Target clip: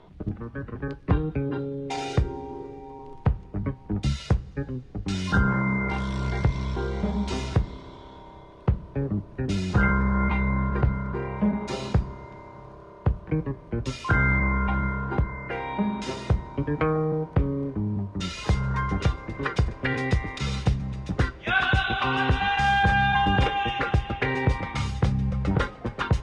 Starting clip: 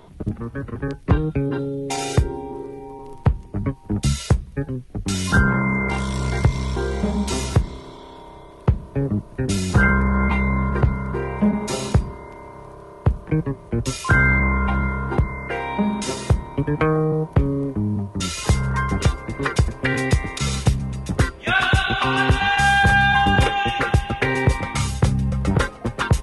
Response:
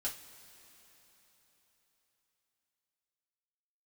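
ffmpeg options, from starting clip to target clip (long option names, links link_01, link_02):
-filter_complex "[0:a]lowpass=4700,asplit=2[link_01][link_02];[1:a]atrim=start_sample=2205,lowpass=7900[link_03];[link_02][link_03]afir=irnorm=-1:irlink=0,volume=-10.5dB[link_04];[link_01][link_04]amix=inputs=2:normalize=0,volume=-6.5dB"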